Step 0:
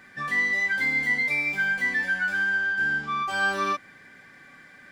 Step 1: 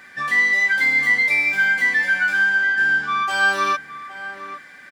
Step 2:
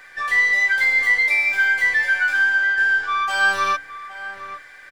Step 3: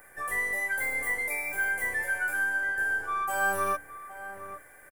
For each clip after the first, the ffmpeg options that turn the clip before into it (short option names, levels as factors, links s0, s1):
-filter_complex "[0:a]lowshelf=f=430:g=-10.5,asplit=2[s0][s1];[s1]adelay=816.3,volume=0.251,highshelf=f=4000:g=-18.4[s2];[s0][s2]amix=inputs=2:normalize=0,volume=2.37"
-filter_complex "[0:a]bandreject=f=73:t=h:w=4,bandreject=f=146:t=h:w=4,bandreject=f=219:t=h:w=4,bandreject=f=292:t=h:w=4,acrossover=split=370[s0][s1];[s0]aeval=exprs='abs(val(0))':c=same[s2];[s2][s1]amix=inputs=2:normalize=0"
-af "firequalizer=gain_entry='entry(600,0);entry(1100,-8);entry(4100,-25);entry(9900,10)':delay=0.05:min_phase=1"